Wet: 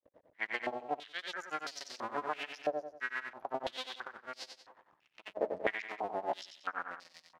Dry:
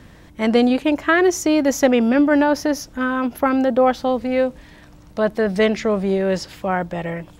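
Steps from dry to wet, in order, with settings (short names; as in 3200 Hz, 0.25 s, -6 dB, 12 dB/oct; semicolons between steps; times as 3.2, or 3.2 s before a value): cycle switcher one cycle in 2, muted; gate with hold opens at -36 dBFS; grains 0.1 s, grains 8/s, spray 25 ms, pitch spread up and down by 0 st; feedback echo 93 ms, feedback 38%, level -6 dB; stepped band-pass 3 Hz 580–4800 Hz; gain -1 dB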